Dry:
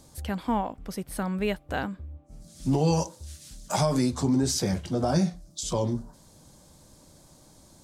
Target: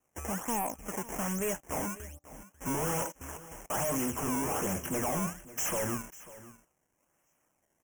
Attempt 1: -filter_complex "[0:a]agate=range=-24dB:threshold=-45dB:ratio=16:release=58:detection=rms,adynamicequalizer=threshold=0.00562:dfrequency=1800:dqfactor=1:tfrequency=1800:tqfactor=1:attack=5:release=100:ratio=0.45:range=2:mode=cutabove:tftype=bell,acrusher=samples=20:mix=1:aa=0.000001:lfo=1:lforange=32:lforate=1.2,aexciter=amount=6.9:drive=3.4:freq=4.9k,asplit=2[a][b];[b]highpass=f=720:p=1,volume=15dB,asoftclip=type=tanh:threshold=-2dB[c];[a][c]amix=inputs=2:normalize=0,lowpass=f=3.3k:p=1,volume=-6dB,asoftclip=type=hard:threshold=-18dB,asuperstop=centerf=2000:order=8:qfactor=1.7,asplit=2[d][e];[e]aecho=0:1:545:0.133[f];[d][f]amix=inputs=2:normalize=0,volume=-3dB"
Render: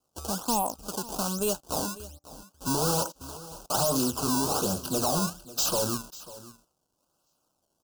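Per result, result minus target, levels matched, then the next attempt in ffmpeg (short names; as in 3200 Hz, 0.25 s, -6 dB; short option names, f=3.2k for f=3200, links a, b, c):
4000 Hz band +8.5 dB; hard clip: distortion -6 dB
-filter_complex "[0:a]agate=range=-24dB:threshold=-45dB:ratio=16:release=58:detection=rms,adynamicequalizer=threshold=0.00562:dfrequency=1800:dqfactor=1:tfrequency=1800:tqfactor=1:attack=5:release=100:ratio=0.45:range=2:mode=cutabove:tftype=bell,acrusher=samples=20:mix=1:aa=0.000001:lfo=1:lforange=32:lforate=1.2,aexciter=amount=6.9:drive=3.4:freq=4.9k,asplit=2[a][b];[b]highpass=f=720:p=1,volume=15dB,asoftclip=type=tanh:threshold=-2dB[c];[a][c]amix=inputs=2:normalize=0,lowpass=f=3.3k:p=1,volume=-6dB,asoftclip=type=hard:threshold=-18dB,asuperstop=centerf=4200:order=8:qfactor=1.7,asplit=2[d][e];[e]aecho=0:1:545:0.133[f];[d][f]amix=inputs=2:normalize=0,volume=-3dB"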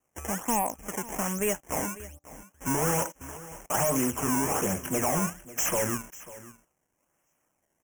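hard clip: distortion -6 dB
-filter_complex "[0:a]agate=range=-24dB:threshold=-45dB:ratio=16:release=58:detection=rms,adynamicequalizer=threshold=0.00562:dfrequency=1800:dqfactor=1:tfrequency=1800:tqfactor=1:attack=5:release=100:ratio=0.45:range=2:mode=cutabove:tftype=bell,acrusher=samples=20:mix=1:aa=0.000001:lfo=1:lforange=32:lforate=1.2,aexciter=amount=6.9:drive=3.4:freq=4.9k,asplit=2[a][b];[b]highpass=f=720:p=1,volume=15dB,asoftclip=type=tanh:threshold=-2dB[c];[a][c]amix=inputs=2:normalize=0,lowpass=f=3.3k:p=1,volume=-6dB,asoftclip=type=hard:threshold=-26dB,asuperstop=centerf=4200:order=8:qfactor=1.7,asplit=2[d][e];[e]aecho=0:1:545:0.133[f];[d][f]amix=inputs=2:normalize=0,volume=-3dB"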